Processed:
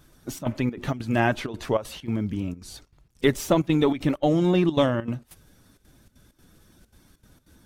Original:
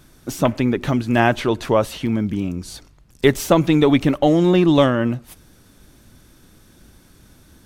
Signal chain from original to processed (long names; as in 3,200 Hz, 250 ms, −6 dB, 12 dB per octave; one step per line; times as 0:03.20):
spectral magnitudes quantised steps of 15 dB
gate pattern "xxxxx.xxx.xx.x" 195 BPM −12 dB
level −5.5 dB